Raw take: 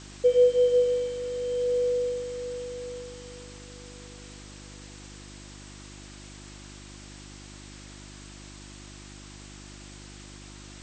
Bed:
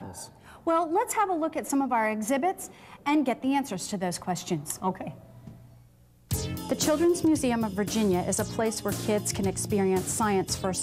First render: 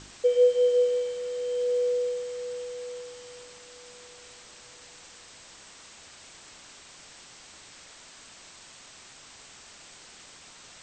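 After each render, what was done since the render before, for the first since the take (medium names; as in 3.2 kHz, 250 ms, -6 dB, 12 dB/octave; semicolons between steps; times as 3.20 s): de-hum 50 Hz, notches 10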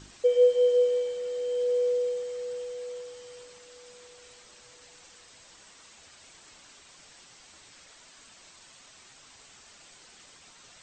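noise reduction 6 dB, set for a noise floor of -50 dBFS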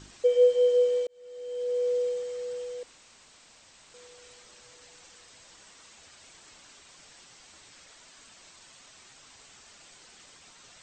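1.07–1.99 s: fade in; 2.83–3.94 s: room tone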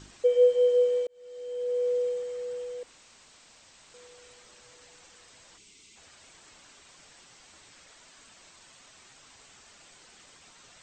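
5.58–5.96 s: time-frequency box 460–2000 Hz -14 dB; dynamic bell 5.1 kHz, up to -5 dB, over -55 dBFS, Q 0.82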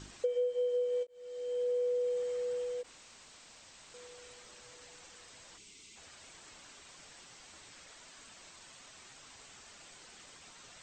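compression 8:1, threshold -30 dBFS, peak gain reduction 14 dB; endings held to a fixed fall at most 580 dB/s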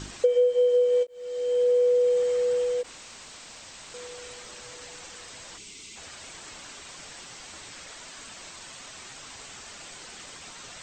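trim +11 dB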